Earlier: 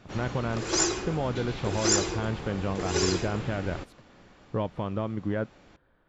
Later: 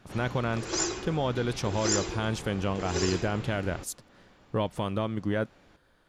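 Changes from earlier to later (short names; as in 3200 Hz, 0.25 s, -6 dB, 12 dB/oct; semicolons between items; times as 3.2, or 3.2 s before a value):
speech: remove air absorption 430 m; background -4.0 dB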